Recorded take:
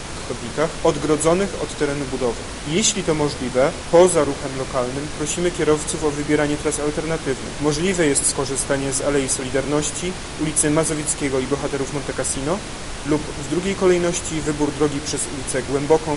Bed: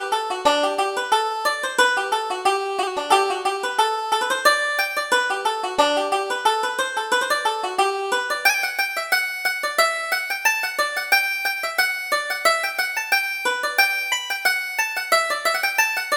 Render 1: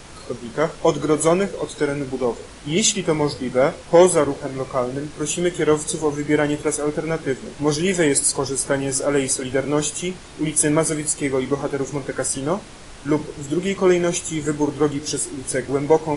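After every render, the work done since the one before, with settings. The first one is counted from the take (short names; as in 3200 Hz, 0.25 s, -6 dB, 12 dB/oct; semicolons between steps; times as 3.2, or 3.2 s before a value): noise print and reduce 10 dB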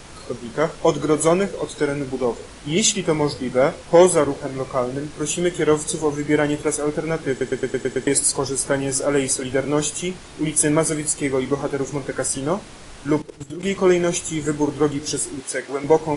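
7.3 stutter in place 0.11 s, 7 plays; 13.19–13.63 level quantiser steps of 15 dB; 15.4–15.84 weighting filter A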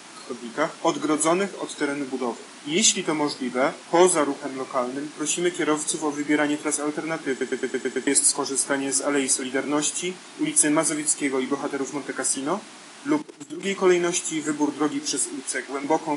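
HPF 220 Hz 24 dB/oct; bell 490 Hz -13 dB 0.36 oct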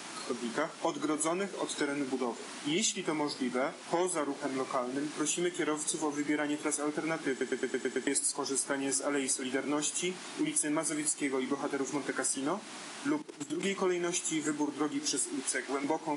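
compressor 4:1, threshold -30 dBFS, peak gain reduction 16 dB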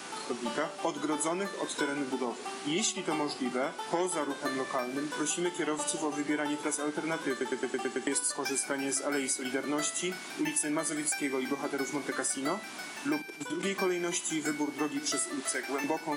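add bed -21 dB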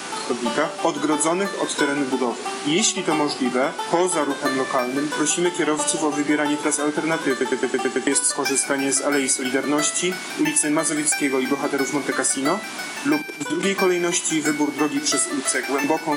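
gain +11 dB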